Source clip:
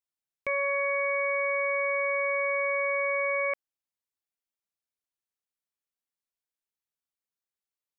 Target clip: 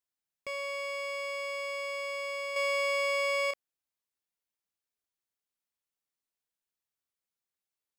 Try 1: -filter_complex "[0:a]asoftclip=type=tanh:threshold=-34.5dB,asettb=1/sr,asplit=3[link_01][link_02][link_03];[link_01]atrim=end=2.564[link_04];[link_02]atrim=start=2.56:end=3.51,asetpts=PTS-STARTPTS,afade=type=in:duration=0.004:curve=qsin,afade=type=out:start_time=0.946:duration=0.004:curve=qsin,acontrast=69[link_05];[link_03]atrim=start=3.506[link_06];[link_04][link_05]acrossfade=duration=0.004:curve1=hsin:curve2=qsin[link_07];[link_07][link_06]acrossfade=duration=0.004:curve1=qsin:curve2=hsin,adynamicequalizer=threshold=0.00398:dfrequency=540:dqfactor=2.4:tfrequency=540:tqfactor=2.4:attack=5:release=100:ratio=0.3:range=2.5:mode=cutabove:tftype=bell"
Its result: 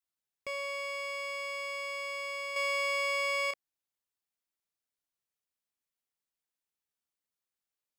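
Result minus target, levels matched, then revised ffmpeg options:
500 Hz band −3.5 dB
-filter_complex "[0:a]asoftclip=type=tanh:threshold=-34.5dB,asettb=1/sr,asplit=3[link_01][link_02][link_03];[link_01]atrim=end=2.564[link_04];[link_02]atrim=start=2.56:end=3.51,asetpts=PTS-STARTPTS,afade=type=in:duration=0.004:curve=qsin,afade=type=out:start_time=0.946:duration=0.004:curve=qsin,acontrast=69[link_05];[link_03]atrim=start=3.506[link_06];[link_04][link_05]acrossfade=duration=0.004:curve1=hsin:curve2=qsin[link_07];[link_07][link_06]acrossfade=duration=0.004:curve1=qsin:curve2=hsin"

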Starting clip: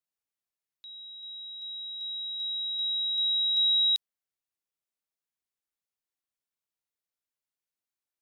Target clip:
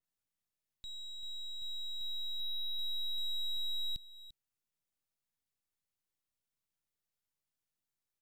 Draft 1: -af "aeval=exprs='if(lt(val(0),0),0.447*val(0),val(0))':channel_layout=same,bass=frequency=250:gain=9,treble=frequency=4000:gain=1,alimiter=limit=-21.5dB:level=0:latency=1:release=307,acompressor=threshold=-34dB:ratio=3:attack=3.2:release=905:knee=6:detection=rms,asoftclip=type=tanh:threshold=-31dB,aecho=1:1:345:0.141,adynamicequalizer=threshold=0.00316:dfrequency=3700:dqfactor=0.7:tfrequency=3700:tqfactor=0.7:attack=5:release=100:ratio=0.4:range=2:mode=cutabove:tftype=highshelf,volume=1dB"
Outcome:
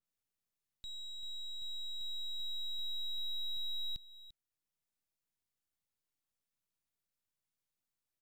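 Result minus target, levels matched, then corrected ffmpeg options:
downward compressor: peak gain reduction +5 dB
-af "aeval=exprs='if(lt(val(0),0),0.447*val(0),val(0))':channel_layout=same,bass=frequency=250:gain=9,treble=frequency=4000:gain=1,alimiter=limit=-21.5dB:level=0:latency=1:release=307,acompressor=threshold=-26.5dB:ratio=3:attack=3.2:release=905:knee=6:detection=rms,asoftclip=type=tanh:threshold=-31dB,aecho=1:1:345:0.141,adynamicequalizer=threshold=0.00316:dfrequency=3700:dqfactor=0.7:tfrequency=3700:tqfactor=0.7:attack=5:release=100:ratio=0.4:range=2:mode=cutabove:tftype=highshelf,volume=1dB"

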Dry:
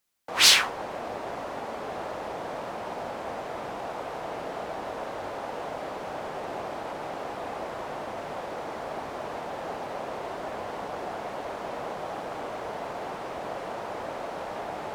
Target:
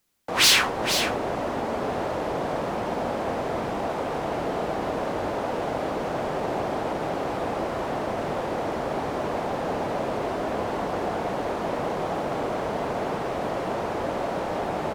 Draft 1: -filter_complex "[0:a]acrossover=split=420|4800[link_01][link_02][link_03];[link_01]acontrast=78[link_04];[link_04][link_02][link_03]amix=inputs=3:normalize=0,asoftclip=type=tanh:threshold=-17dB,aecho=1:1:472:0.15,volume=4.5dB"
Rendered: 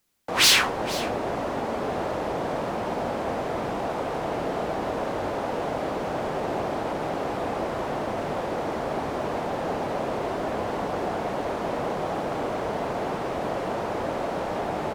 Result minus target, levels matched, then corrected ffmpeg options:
echo-to-direct −8.5 dB
-filter_complex "[0:a]acrossover=split=420|4800[link_01][link_02][link_03];[link_01]acontrast=78[link_04];[link_04][link_02][link_03]amix=inputs=3:normalize=0,asoftclip=type=tanh:threshold=-17dB,aecho=1:1:472:0.398,volume=4.5dB"

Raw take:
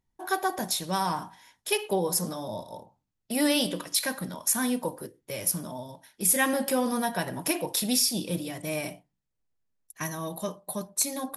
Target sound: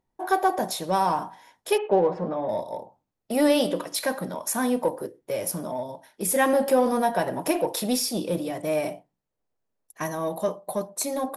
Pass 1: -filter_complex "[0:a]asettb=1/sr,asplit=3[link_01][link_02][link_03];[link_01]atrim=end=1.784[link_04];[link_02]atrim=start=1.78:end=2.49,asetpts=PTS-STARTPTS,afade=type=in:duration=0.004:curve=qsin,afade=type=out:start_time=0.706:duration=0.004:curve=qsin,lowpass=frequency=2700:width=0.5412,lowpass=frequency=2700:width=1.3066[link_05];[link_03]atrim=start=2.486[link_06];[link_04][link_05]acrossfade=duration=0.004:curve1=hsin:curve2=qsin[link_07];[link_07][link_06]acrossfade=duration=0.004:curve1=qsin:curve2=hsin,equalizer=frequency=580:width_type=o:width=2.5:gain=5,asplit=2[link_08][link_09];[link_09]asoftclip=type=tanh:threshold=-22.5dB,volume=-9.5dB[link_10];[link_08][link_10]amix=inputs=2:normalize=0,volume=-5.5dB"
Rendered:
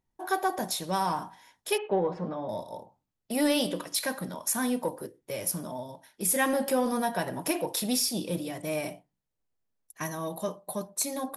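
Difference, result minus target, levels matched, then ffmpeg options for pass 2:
500 Hz band −2.5 dB
-filter_complex "[0:a]asettb=1/sr,asplit=3[link_01][link_02][link_03];[link_01]atrim=end=1.784[link_04];[link_02]atrim=start=1.78:end=2.49,asetpts=PTS-STARTPTS,afade=type=in:duration=0.004:curve=qsin,afade=type=out:start_time=0.706:duration=0.004:curve=qsin,lowpass=frequency=2700:width=0.5412,lowpass=frequency=2700:width=1.3066[link_05];[link_03]atrim=start=2.486[link_06];[link_04][link_05]acrossfade=duration=0.004:curve1=hsin:curve2=qsin[link_07];[link_07][link_06]acrossfade=duration=0.004:curve1=qsin:curve2=hsin,equalizer=frequency=580:width_type=o:width=2.5:gain=13,asplit=2[link_08][link_09];[link_09]asoftclip=type=tanh:threshold=-22.5dB,volume=-9.5dB[link_10];[link_08][link_10]amix=inputs=2:normalize=0,volume=-5.5dB"

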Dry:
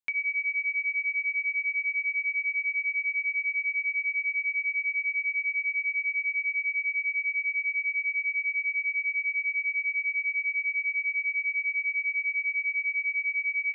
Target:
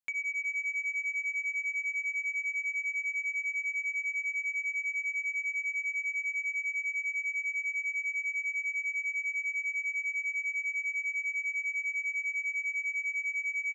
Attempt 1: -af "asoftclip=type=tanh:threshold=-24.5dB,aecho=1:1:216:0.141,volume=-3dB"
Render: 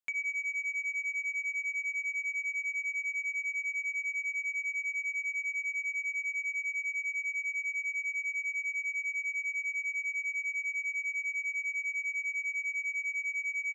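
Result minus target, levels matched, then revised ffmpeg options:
echo 152 ms early
-af "asoftclip=type=tanh:threshold=-24.5dB,aecho=1:1:368:0.141,volume=-3dB"

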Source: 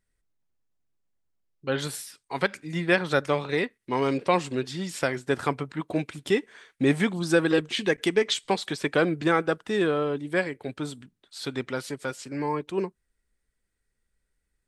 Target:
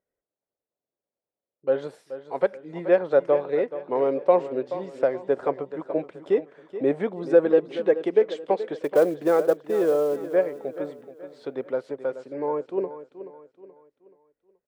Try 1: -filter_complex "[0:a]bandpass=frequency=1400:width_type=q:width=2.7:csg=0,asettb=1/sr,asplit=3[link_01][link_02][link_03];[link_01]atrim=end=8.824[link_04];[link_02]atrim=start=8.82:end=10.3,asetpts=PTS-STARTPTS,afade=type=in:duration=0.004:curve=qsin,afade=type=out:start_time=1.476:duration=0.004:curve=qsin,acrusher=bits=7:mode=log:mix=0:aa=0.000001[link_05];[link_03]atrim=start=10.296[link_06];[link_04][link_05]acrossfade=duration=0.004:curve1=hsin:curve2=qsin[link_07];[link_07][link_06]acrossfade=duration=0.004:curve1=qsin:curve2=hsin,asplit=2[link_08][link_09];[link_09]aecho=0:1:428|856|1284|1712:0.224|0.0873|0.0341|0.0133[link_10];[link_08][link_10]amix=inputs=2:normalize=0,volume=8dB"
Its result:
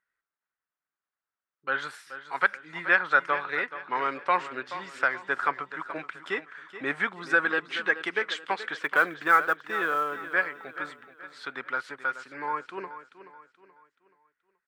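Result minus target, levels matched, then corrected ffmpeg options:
500 Hz band −11.5 dB
-filter_complex "[0:a]bandpass=frequency=540:width_type=q:width=2.7:csg=0,asettb=1/sr,asplit=3[link_01][link_02][link_03];[link_01]atrim=end=8.824[link_04];[link_02]atrim=start=8.82:end=10.3,asetpts=PTS-STARTPTS,afade=type=in:duration=0.004:curve=qsin,afade=type=out:start_time=1.476:duration=0.004:curve=qsin,acrusher=bits=7:mode=log:mix=0:aa=0.000001[link_05];[link_03]atrim=start=10.296[link_06];[link_04][link_05]acrossfade=duration=0.004:curve1=hsin:curve2=qsin[link_07];[link_07][link_06]acrossfade=duration=0.004:curve1=qsin:curve2=hsin,asplit=2[link_08][link_09];[link_09]aecho=0:1:428|856|1284|1712:0.224|0.0873|0.0341|0.0133[link_10];[link_08][link_10]amix=inputs=2:normalize=0,volume=8dB"

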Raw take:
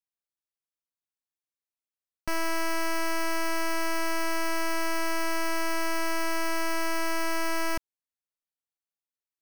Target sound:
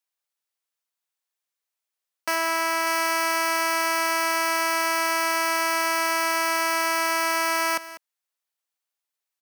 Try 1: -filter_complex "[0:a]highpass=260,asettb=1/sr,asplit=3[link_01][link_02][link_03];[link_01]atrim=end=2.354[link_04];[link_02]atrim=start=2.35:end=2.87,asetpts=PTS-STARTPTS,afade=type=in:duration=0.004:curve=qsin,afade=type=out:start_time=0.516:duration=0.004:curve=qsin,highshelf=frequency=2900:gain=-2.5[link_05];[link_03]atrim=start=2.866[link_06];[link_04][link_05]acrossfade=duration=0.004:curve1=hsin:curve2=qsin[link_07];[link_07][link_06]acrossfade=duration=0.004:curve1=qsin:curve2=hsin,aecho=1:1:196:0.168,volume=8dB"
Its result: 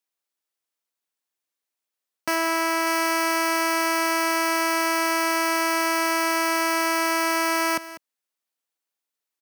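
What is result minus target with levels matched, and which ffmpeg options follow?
250 Hz band +7.5 dB
-filter_complex "[0:a]highpass=550,asettb=1/sr,asplit=3[link_01][link_02][link_03];[link_01]atrim=end=2.354[link_04];[link_02]atrim=start=2.35:end=2.87,asetpts=PTS-STARTPTS,afade=type=in:duration=0.004:curve=qsin,afade=type=out:start_time=0.516:duration=0.004:curve=qsin,highshelf=frequency=2900:gain=-2.5[link_05];[link_03]atrim=start=2.866[link_06];[link_04][link_05]acrossfade=duration=0.004:curve1=hsin:curve2=qsin[link_07];[link_07][link_06]acrossfade=duration=0.004:curve1=qsin:curve2=hsin,aecho=1:1:196:0.168,volume=8dB"

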